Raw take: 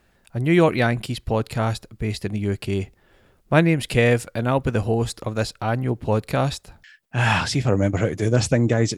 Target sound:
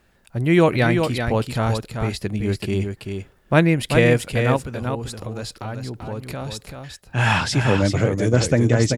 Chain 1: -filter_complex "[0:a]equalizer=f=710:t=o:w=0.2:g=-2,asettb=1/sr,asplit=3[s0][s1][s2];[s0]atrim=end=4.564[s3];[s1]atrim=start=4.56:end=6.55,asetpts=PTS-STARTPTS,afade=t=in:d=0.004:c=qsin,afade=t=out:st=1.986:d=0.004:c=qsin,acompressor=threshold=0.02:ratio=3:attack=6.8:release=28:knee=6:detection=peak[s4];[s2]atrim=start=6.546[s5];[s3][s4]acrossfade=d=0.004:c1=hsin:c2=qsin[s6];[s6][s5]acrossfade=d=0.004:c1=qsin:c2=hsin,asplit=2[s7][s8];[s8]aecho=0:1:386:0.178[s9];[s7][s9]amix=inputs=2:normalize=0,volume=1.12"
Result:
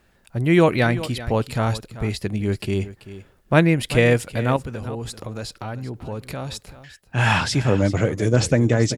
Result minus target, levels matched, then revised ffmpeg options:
echo-to-direct -9 dB
-filter_complex "[0:a]equalizer=f=710:t=o:w=0.2:g=-2,asettb=1/sr,asplit=3[s0][s1][s2];[s0]atrim=end=4.564[s3];[s1]atrim=start=4.56:end=6.55,asetpts=PTS-STARTPTS,afade=t=in:d=0.004:c=qsin,afade=t=out:st=1.986:d=0.004:c=qsin,acompressor=threshold=0.02:ratio=3:attack=6.8:release=28:knee=6:detection=peak[s4];[s2]atrim=start=6.546[s5];[s3][s4]acrossfade=d=0.004:c1=hsin:c2=qsin[s6];[s6][s5]acrossfade=d=0.004:c1=qsin:c2=hsin,asplit=2[s7][s8];[s8]aecho=0:1:386:0.501[s9];[s7][s9]amix=inputs=2:normalize=0,volume=1.12"

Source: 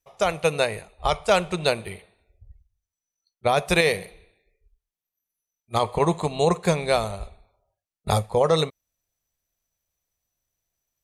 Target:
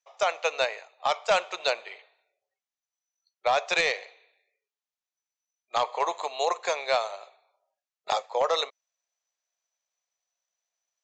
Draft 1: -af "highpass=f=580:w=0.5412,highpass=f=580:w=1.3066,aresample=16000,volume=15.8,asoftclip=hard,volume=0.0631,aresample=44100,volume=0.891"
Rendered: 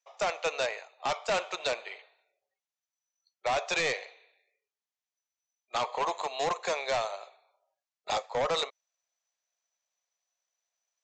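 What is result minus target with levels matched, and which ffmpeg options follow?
overload inside the chain: distortion +11 dB
-af "highpass=f=580:w=0.5412,highpass=f=580:w=1.3066,aresample=16000,volume=5.62,asoftclip=hard,volume=0.178,aresample=44100,volume=0.891"

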